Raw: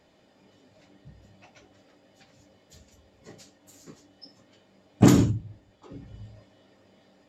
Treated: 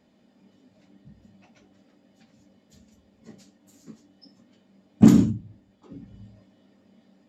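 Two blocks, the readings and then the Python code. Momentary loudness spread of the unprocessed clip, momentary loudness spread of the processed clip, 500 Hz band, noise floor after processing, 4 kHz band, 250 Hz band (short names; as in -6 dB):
12 LU, 15 LU, -3.0 dB, -63 dBFS, n/a, +4.5 dB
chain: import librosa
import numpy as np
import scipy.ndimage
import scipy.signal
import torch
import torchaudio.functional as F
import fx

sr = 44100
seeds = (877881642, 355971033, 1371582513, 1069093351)

y = fx.peak_eq(x, sr, hz=220.0, db=14.5, octaves=0.66)
y = y * librosa.db_to_amplitude(-5.5)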